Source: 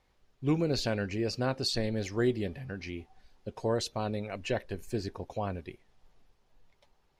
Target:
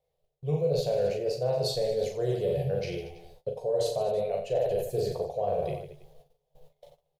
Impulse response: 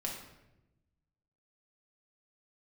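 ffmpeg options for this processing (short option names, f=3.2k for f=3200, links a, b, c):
-filter_complex "[0:a]firequalizer=gain_entry='entry(100,0);entry(150,12);entry(250,-23);entry(450,15);entry(660,14);entry(940,-2);entry(1400,-10);entry(3400,3);entry(5300,-1);entry(12000,11)':delay=0.05:min_phase=1,aecho=1:1:40|90|152.5|230.6|328.3:0.631|0.398|0.251|0.158|0.1,areverse,acompressor=threshold=-28dB:ratio=6,areverse,agate=range=-18dB:threshold=-56dB:ratio=16:detection=peak,asplit=2[a][b];[b]adelay=14,volume=-7dB[c];[a][c]amix=inputs=2:normalize=0,volume=2dB"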